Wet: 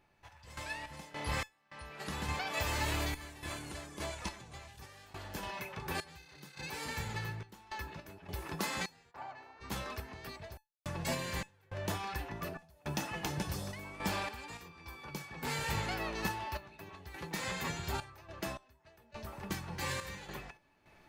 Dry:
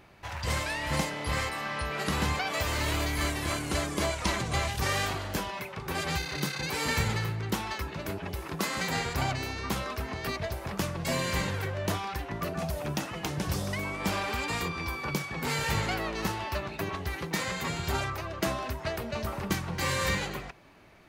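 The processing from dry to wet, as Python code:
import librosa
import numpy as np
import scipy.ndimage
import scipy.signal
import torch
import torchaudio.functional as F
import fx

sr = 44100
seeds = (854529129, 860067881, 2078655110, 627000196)

y = fx.bandpass_q(x, sr, hz=910.0, q=1.4, at=(9.1, 9.6), fade=0.02)
y = fx.tremolo_random(y, sr, seeds[0], hz=3.5, depth_pct=100)
y = fx.comb_fb(y, sr, f0_hz=860.0, decay_s=0.19, harmonics='all', damping=0.0, mix_pct=80)
y = y * librosa.db_to_amplitude(8.5)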